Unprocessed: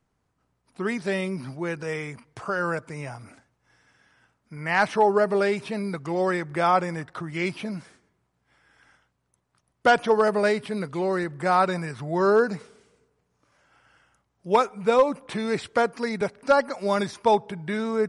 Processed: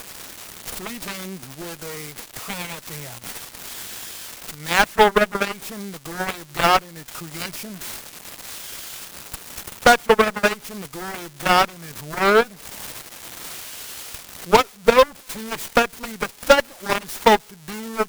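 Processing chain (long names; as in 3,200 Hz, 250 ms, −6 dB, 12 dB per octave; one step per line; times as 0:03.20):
spike at every zero crossing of −18.5 dBFS
harmonic generator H 6 −19 dB, 7 −13 dB, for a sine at −8 dBFS
transient designer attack +4 dB, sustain −8 dB
level +2.5 dB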